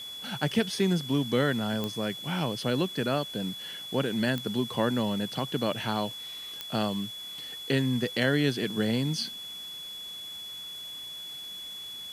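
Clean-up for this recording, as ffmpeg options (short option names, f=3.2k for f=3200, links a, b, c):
-af "adeclick=t=4,bandreject=f=3.4k:w=30,afwtdn=0.0032"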